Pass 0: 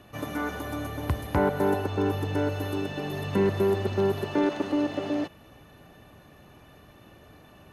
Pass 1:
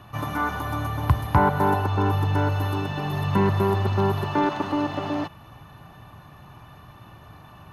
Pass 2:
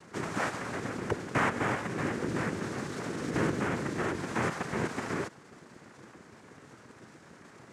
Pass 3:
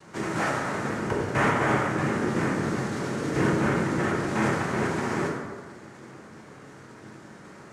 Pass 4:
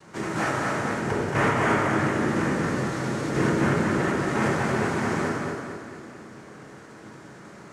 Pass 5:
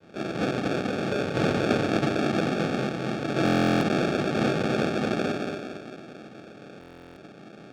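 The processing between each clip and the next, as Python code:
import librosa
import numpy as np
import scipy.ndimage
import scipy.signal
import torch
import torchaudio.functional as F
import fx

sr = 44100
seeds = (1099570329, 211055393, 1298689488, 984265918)

y1 = fx.graphic_eq(x, sr, hz=(125, 250, 500, 1000, 2000, 8000), db=(7, -4, -8, 9, -3, -6))
y1 = F.gain(torch.from_numpy(y1), 4.5).numpy()
y2 = fx.rider(y1, sr, range_db=3, speed_s=2.0)
y2 = fx.noise_vocoder(y2, sr, seeds[0], bands=3)
y2 = F.gain(torch.from_numpy(y2), -8.5).numpy()
y3 = fx.rev_plate(y2, sr, seeds[1], rt60_s=1.6, hf_ratio=0.5, predelay_ms=0, drr_db=-3.0)
y3 = F.gain(torch.from_numpy(y3), 1.0).numpy()
y4 = fx.echo_feedback(y3, sr, ms=227, feedback_pct=46, wet_db=-4.5)
y5 = fx.sample_hold(y4, sr, seeds[2], rate_hz=1000.0, jitter_pct=0)
y5 = fx.bandpass_edges(y5, sr, low_hz=150.0, high_hz=4500.0)
y5 = fx.buffer_glitch(y5, sr, at_s=(3.44, 6.79), block=1024, repeats=15)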